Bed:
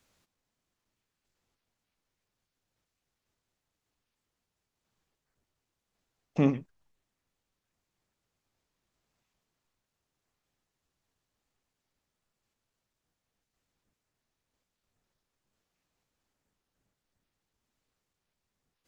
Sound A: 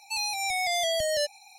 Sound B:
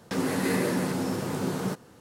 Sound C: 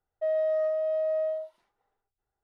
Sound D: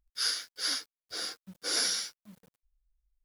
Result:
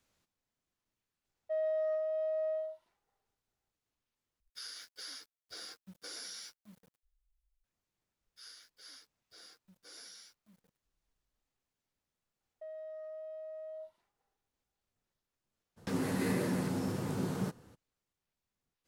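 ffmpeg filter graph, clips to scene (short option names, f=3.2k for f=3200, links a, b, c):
-filter_complex "[3:a]asplit=2[a][b];[4:a]asplit=2[c][d];[0:a]volume=-6dB[e];[c]acompressor=threshold=-38dB:ratio=6:attack=3.2:release=140:knee=1:detection=peak[f];[d]acompressor=threshold=-48dB:ratio=2:attack=2.8:release=63:knee=1:detection=peak[g];[b]alimiter=level_in=10dB:limit=-24dB:level=0:latency=1:release=35,volume=-10dB[h];[2:a]lowshelf=f=130:g=11.5[i];[e]asplit=2[j][k];[j]atrim=end=4.404[l];[f]atrim=end=3.24,asetpts=PTS-STARTPTS,volume=-4.5dB[m];[k]atrim=start=7.636[n];[a]atrim=end=2.43,asetpts=PTS-STARTPTS,volume=-6.5dB,afade=t=in:d=0.004:c=hsin,afade=t=out:st=2.426:d=0.004:c=hsin,adelay=1280[o];[g]atrim=end=3.24,asetpts=PTS-STARTPTS,volume=-11.5dB,afade=t=in:d=0.004:c=hsin,afade=t=out:st=3.236:d=0.004:c=hsin,adelay=8210[p];[h]atrim=end=2.43,asetpts=PTS-STARTPTS,volume=-7.5dB,afade=t=in:d=0.004:c=hsin,afade=t=out:st=2.426:d=0.004:c=hsin,adelay=12400[q];[i]atrim=end=2,asetpts=PTS-STARTPTS,volume=-8.5dB,afade=t=in:d=0.02,afade=t=out:st=1.98:d=0.02,adelay=15760[r];[l][m]acrossfade=d=0.004:c1=hsin:c2=hsin[s];[s][n]acrossfade=d=0.004:c1=hsin:c2=hsin[t];[t][o][p][q][r]amix=inputs=5:normalize=0"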